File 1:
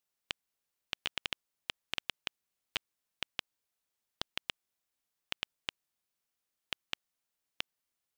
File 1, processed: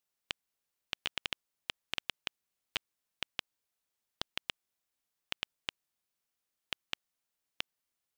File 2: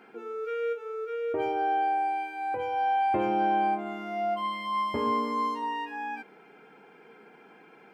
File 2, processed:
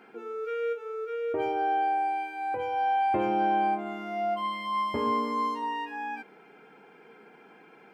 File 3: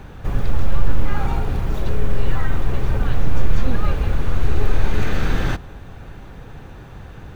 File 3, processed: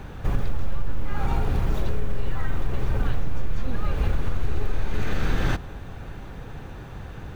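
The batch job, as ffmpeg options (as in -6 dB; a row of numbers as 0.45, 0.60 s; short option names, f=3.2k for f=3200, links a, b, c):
-af "acompressor=threshold=-16dB:ratio=6"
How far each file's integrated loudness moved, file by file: 0.0, 0.0, -6.0 LU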